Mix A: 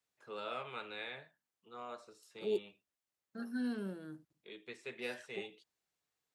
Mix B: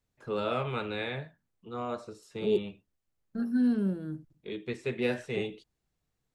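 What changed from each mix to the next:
first voice +6.5 dB; master: remove HPF 910 Hz 6 dB/oct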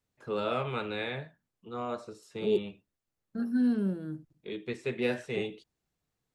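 master: add low shelf 63 Hz -9.5 dB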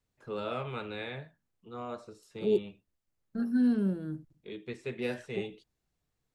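first voice -4.5 dB; master: add low shelf 63 Hz +9.5 dB

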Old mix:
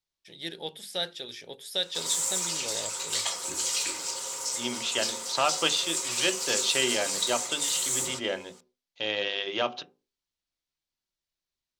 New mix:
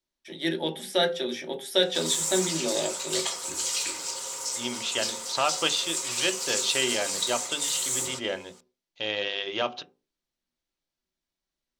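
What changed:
first voice: send on; second voice: remove HPF 100 Hz 24 dB/oct

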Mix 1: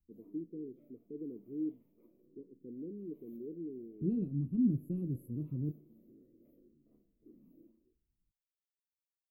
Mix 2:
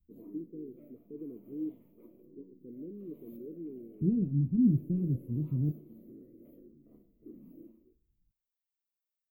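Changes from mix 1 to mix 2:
second voice: add tone controls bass +8 dB, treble -10 dB; background +9.5 dB

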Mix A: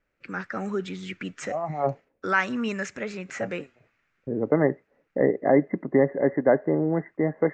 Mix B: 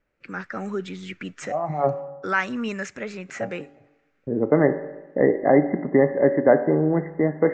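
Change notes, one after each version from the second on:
reverb: on, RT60 1.1 s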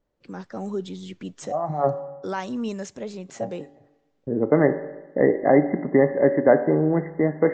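first voice: add band shelf 1800 Hz -14 dB 1.3 oct

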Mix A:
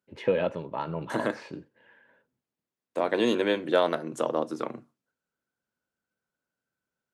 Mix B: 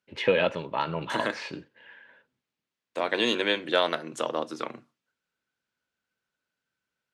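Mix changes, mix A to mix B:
second voice -4.5 dB; master: add bell 3300 Hz +12 dB 2.8 oct

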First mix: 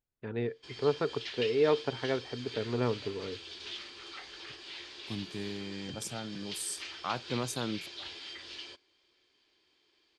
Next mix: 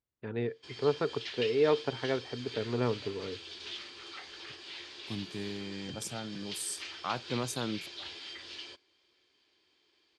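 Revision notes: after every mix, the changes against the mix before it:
master: add HPF 47 Hz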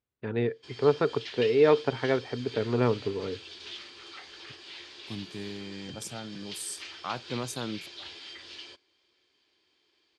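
first voice +5.5 dB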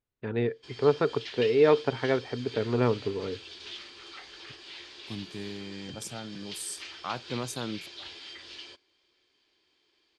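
master: remove HPF 47 Hz

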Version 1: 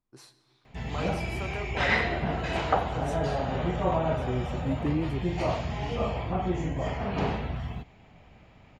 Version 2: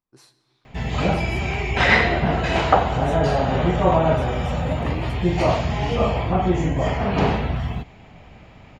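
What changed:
second voice: add tilt shelf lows -8.5 dB, about 660 Hz; background +9.0 dB

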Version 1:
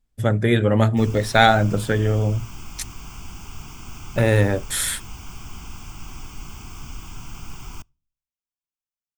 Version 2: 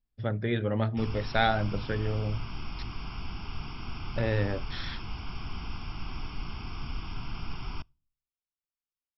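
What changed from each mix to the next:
speech -11.0 dB; master: add brick-wall FIR low-pass 5600 Hz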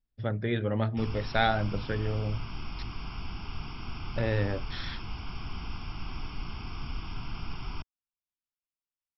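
reverb: off

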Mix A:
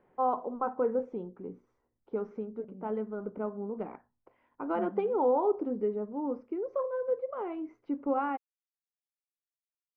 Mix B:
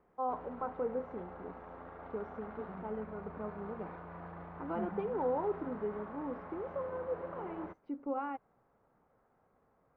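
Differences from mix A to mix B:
first voice -7.0 dB; background: unmuted

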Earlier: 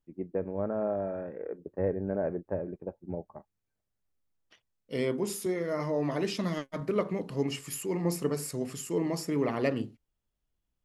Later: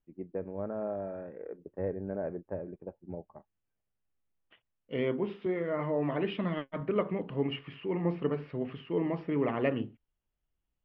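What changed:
first voice -4.5 dB; second voice: add elliptic low-pass 3100 Hz, stop band 60 dB

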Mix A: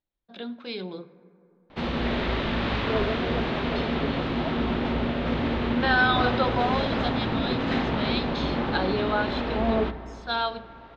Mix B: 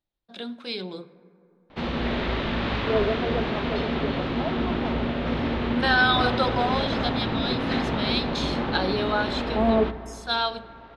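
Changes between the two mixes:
first voice: remove air absorption 180 m; second voice +4.5 dB

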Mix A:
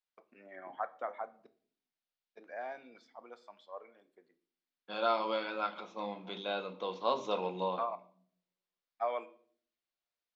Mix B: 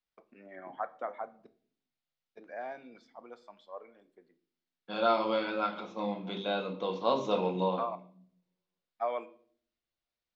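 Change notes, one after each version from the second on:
second voice: send +6.0 dB; master: add low shelf 260 Hz +11 dB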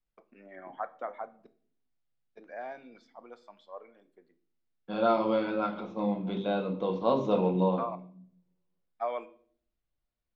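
second voice: add tilt -3 dB/oct

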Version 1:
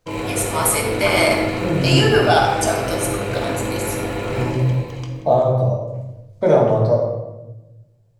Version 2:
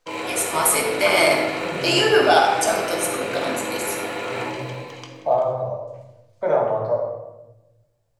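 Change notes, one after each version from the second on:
second voice: add three-band isolator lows -16 dB, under 580 Hz, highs -16 dB, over 2100 Hz; background: add weighting filter A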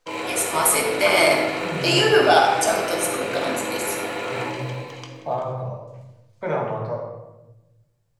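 second voice: add fifteen-band EQ 160 Hz +7 dB, 630 Hz -9 dB, 2500 Hz +7 dB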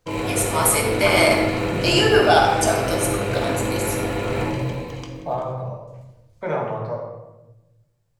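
background: remove weighting filter A

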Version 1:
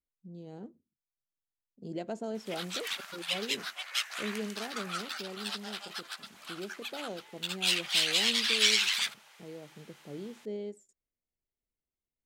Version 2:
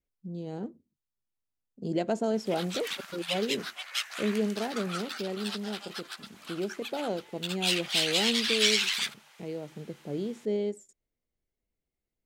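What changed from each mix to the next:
speech +8.5 dB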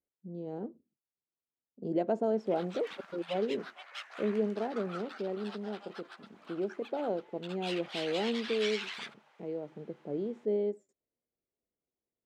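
master: add band-pass 490 Hz, Q 0.67

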